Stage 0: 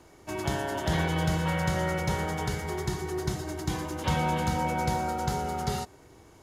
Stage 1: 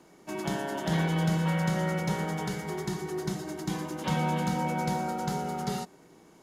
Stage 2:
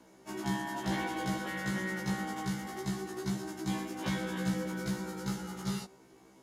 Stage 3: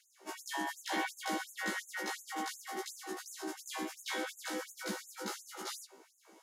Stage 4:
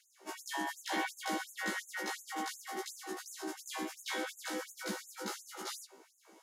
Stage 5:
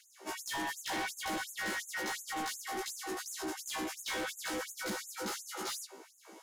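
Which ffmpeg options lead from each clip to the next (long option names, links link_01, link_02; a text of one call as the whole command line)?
ffmpeg -i in.wav -af "lowshelf=frequency=130:width_type=q:width=3:gain=-10,volume=-2.5dB" out.wav
ffmpeg -i in.wav -af "afftfilt=real='re*1.73*eq(mod(b,3),0)':imag='im*1.73*eq(mod(b,3),0)':win_size=2048:overlap=0.75" out.wav
ffmpeg -i in.wav -af "afftfilt=real='re*gte(b*sr/1024,210*pow(6400/210,0.5+0.5*sin(2*PI*2.8*pts/sr)))':imag='im*gte(b*sr/1024,210*pow(6400/210,0.5+0.5*sin(2*PI*2.8*pts/sr)))':win_size=1024:overlap=0.75,volume=2dB" out.wav
ffmpeg -i in.wav -af anull out.wav
ffmpeg -i in.wav -af "asoftclip=type=tanh:threshold=-39.5dB,volume=6.5dB" out.wav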